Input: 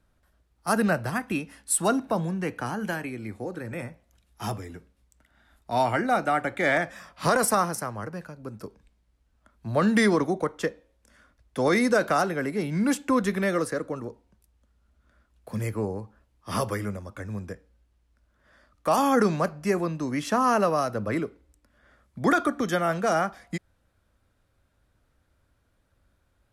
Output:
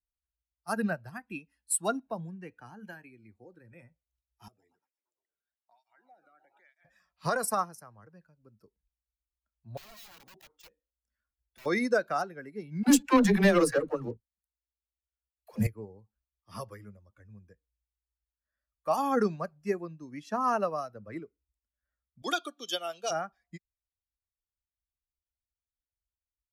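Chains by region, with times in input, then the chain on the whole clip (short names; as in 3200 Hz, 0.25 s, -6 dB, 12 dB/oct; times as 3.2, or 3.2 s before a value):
4.48–6.85 frequency-shifting echo 0.115 s, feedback 63%, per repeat +47 Hz, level -14 dB + compressor 5:1, threshold -37 dBFS + tape flanging out of phase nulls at 1.1 Hz, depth 1.2 ms
9.77–11.66 compressor 8:1, threshold -26 dBFS + wrapped overs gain 29 dB
12.83–15.67 sample leveller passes 3 + dispersion lows, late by 70 ms, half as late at 310 Hz
22.22–23.11 HPF 330 Hz + resonant high shelf 2400 Hz +7.5 dB, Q 3
whole clip: per-bin expansion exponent 1.5; upward expander 1.5:1, over -37 dBFS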